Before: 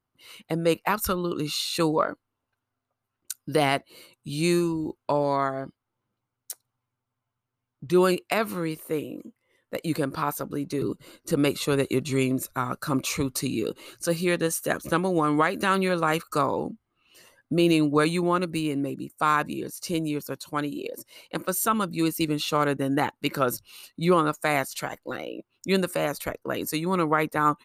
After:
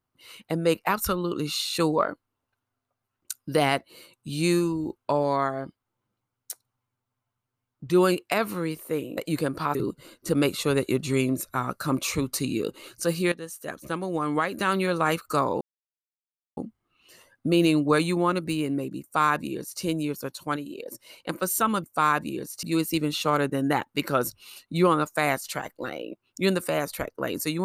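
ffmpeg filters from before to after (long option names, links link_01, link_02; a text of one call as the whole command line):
ffmpeg -i in.wav -filter_complex "[0:a]asplit=9[link_01][link_02][link_03][link_04][link_05][link_06][link_07][link_08][link_09];[link_01]atrim=end=9.172[link_10];[link_02]atrim=start=9.738:end=10.322[link_11];[link_03]atrim=start=10.768:end=14.34,asetpts=PTS-STARTPTS,afade=type=out:start_time=3.568:duration=0.004:curve=hsin:silence=0.188365[link_12];[link_04]atrim=start=14.34:end=16.63,asetpts=PTS-STARTPTS,afade=type=in:duration=1.74:silence=0.188365,afade=type=out:start_time=2.286:duration=0.004:curve=hsin,apad=pad_dur=0.96[link_13];[link_05]atrim=start=16.63:end=20.622,asetpts=PTS-STARTPTS,afade=type=in:duration=0.004:curve=hsin[link_14];[link_06]atrim=start=20.618:end=20.922,asetpts=PTS-STARTPTS,volume=-4.5dB[link_15];[link_07]atrim=start=20.918:end=21.902[link_16];[link_08]atrim=start=19.078:end=19.872[link_17];[link_09]atrim=start=21.898[link_18];[link_10][link_11]acrossfade=duration=0.004:curve1=hsin:curve2=hsin[link_19];[link_12][link_13][link_14]concat=n=3:v=0:a=1[link_20];[link_19][link_20]acrossfade=duration=0.004:curve1=hsin:curve2=hsin[link_21];[link_21][link_15]acrossfade=duration=0.004:curve1=hsin:curve2=hsin[link_22];[link_22][link_16]acrossfade=duration=0.004:curve1=hsin:curve2=hsin[link_23];[link_23][link_17]acrossfade=duration=0.004:curve1=hsin:curve2=hsin[link_24];[link_24][link_18]acrossfade=duration=0.004:curve1=hsin:curve2=hsin" out.wav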